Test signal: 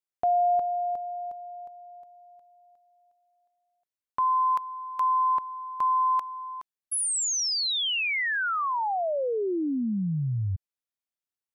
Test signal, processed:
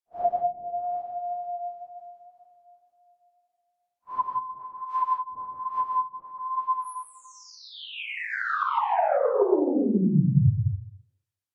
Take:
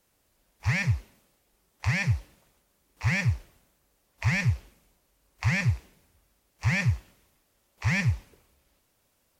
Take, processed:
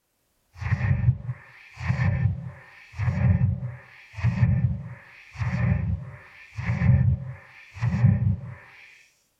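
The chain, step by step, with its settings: phase scrambler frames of 0.2 s; delay with a stepping band-pass 0.21 s, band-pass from 170 Hz, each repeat 1.4 oct, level -5 dB; wow and flutter 15 cents; treble ducked by the level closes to 310 Hz, closed at -19 dBFS; non-linear reverb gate 0.2 s rising, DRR 2 dB; upward expander 1.5:1, over -31 dBFS; gain +4.5 dB

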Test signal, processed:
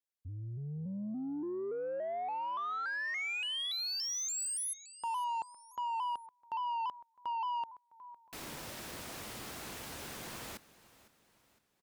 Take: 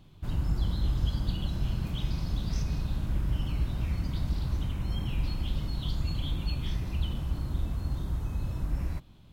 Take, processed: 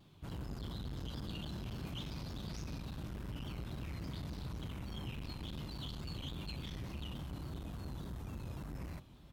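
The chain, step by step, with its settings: feedback echo 0.509 s, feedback 44%, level -19.5 dB; soft clip -29.5 dBFS; HPF 150 Hz 6 dB/oct; shaped vibrato saw down 3.5 Hz, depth 100 cents; gain -2.5 dB

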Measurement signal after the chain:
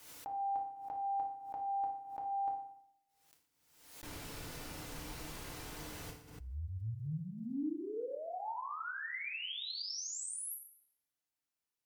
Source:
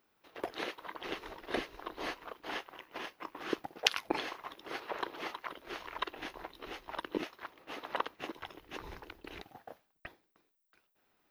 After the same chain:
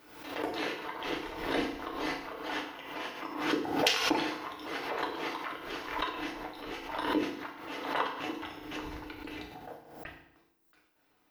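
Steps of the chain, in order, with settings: FDN reverb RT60 0.7 s, low-frequency decay 1.2×, high-frequency decay 0.9×, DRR -1.5 dB; sine folder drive 3 dB, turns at -1.5 dBFS; backwards sustainer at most 64 dB/s; gain -6.5 dB

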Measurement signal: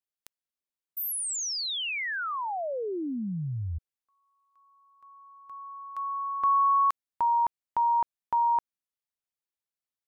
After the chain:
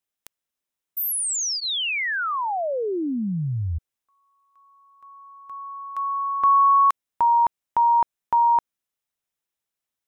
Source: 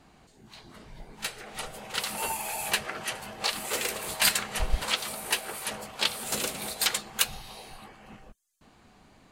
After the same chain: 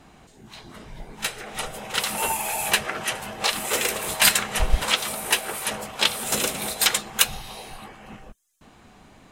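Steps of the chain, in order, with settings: notch 4500 Hz, Q 10; gain +6.5 dB

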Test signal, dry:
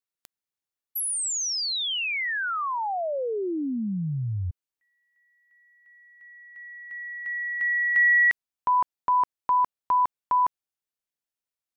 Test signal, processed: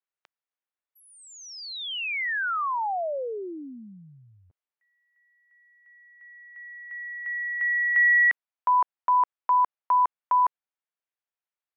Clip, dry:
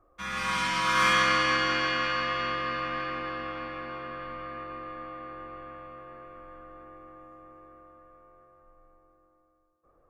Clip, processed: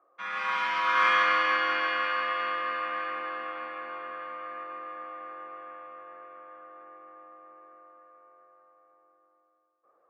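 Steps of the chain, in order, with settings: BPF 560–2400 Hz; gain +1.5 dB

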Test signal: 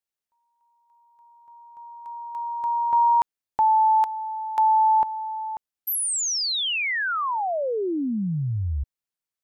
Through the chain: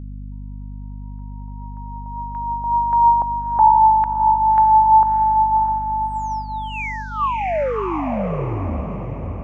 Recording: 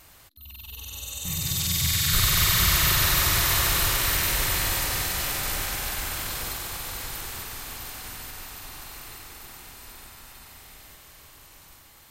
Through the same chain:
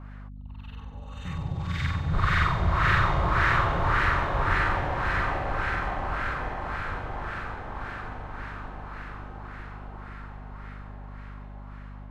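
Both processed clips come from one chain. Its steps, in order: LFO low-pass sine 1.8 Hz 720–1700 Hz; diffused feedback echo 0.635 s, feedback 47%, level -5 dB; hum 50 Hz, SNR 13 dB

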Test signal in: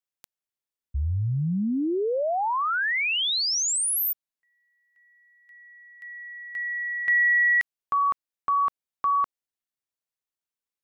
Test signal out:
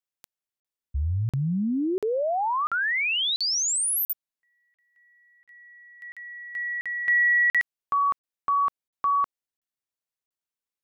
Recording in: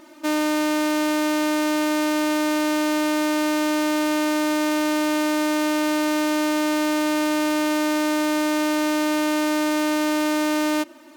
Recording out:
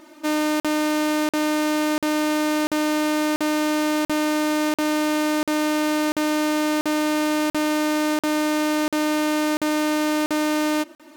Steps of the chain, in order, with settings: crackling interface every 0.69 s, samples 2048, zero, from 0.6

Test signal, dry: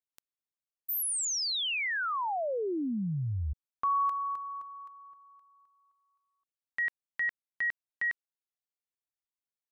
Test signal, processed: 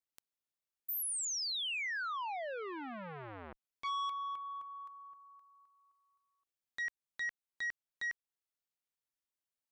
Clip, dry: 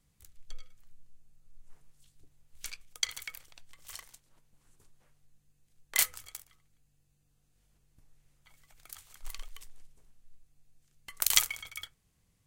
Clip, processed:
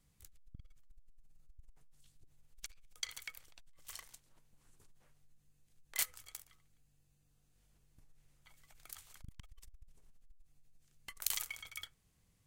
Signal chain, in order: in parallel at +1.5 dB: compressor, threshold -43 dBFS; on the sum: core saturation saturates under 2300 Hz; gain -8 dB

